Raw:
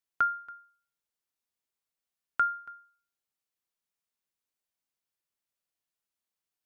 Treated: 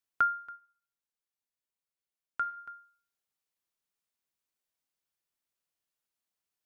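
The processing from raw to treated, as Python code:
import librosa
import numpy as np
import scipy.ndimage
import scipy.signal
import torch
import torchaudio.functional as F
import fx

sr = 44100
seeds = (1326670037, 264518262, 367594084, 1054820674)

y = fx.comb_fb(x, sr, f0_hz=77.0, decay_s=0.58, harmonics='all', damping=0.0, mix_pct=60, at=(0.55, 2.56), fade=0.02)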